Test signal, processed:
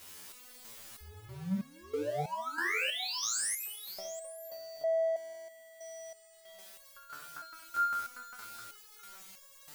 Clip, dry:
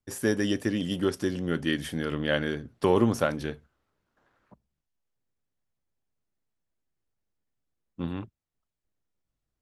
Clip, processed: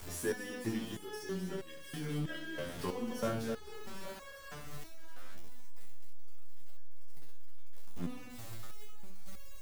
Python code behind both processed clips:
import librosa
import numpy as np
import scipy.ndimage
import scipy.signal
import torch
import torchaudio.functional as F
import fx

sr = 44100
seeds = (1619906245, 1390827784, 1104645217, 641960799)

p1 = x + 0.5 * 10.0 ** (-28.0 / 20.0) * np.sign(x)
p2 = fx.level_steps(p1, sr, step_db=12)
p3 = p1 + (p2 * 10.0 ** (-1.0 / 20.0))
p4 = fx.echo_multitap(p3, sr, ms=(66, 259, 800, 827), db=(-5.5, -8.5, -19.0, -11.0))
p5 = fx.resonator_held(p4, sr, hz=3.1, low_hz=87.0, high_hz=550.0)
y = p5 * 10.0 ** (-7.0 / 20.0)